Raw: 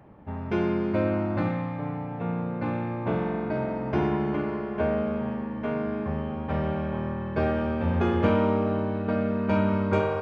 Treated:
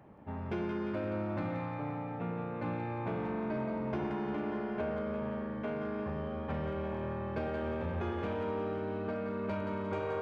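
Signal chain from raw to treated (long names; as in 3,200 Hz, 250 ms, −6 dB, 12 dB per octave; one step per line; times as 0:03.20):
downward compressor 8 to 1, threshold −26 dBFS, peak gain reduction 9.5 dB
hard clipping −22 dBFS, distortion −29 dB
low-shelf EQ 61 Hz −8.5 dB
echo with a time of its own for lows and highs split 500 Hz, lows 104 ms, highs 175 ms, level −7.5 dB
soft clipping −22 dBFS, distortion −23 dB
level −4 dB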